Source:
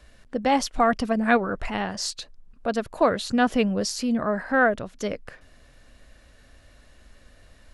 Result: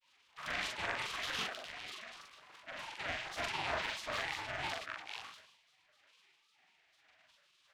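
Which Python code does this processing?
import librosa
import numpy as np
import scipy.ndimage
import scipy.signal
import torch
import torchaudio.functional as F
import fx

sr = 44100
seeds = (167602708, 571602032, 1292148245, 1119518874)

y = fx.spec_flatten(x, sr, power=0.16)
y = scipy.signal.sosfilt(scipy.signal.butter(2, 1300.0, 'lowpass', fs=sr, output='sos'), y)
y = fx.spec_gate(y, sr, threshold_db=-15, keep='weak')
y = fx.peak_eq(y, sr, hz=860.0, db=14.5, octaves=0.32)
y = fx.transient(y, sr, attack_db=-7, sustain_db=11)
y = fx.granulator(y, sr, seeds[0], grain_ms=100.0, per_s=20.0, spray_ms=100.0, spread_st=7)
y = fx.doubler(y, sr, ms=42.0, db=-3)
y = fx.sustainer(y, sr, db_per_s=72.0)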